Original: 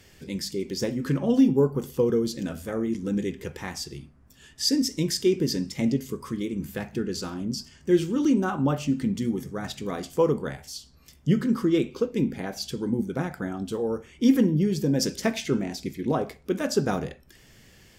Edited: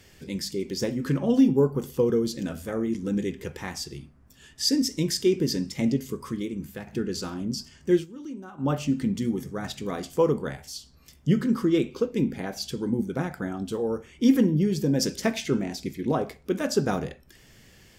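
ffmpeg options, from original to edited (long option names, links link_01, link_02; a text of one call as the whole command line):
ffmpeg -i in.wav -filter_complex "[0:a]asplit=4[link_01][link_02][link_03][link_04];[link_01]atrim=end=6.87,asetpts=PTS-STARTPTS,afade=type=out:start_time=6.3:duration=0.57:silence=0.446684[link_05];[link_02]atrim=start=6.87:end=8.06,asetpts=PTS-STARTPTS,afade=type=in:duration=0.004:curve=hsin:silence=0.446684,afade=type=out:start_time=1.06:duration=0.13:silence=0.158489[link_06];[link_03]atrim=start=8.06:end=8.57,asetpts=PTS-STARTPTS,volume=-16dB[link_07];[link_04]atrim=start=8.57,asetpts=PTS-STARTPTS,afade=type=in:duration=0.13:silence=0.158489[link_08];[link_05][link_06][link_07][link_08]concat=n=4:v=0:a=1" out.wav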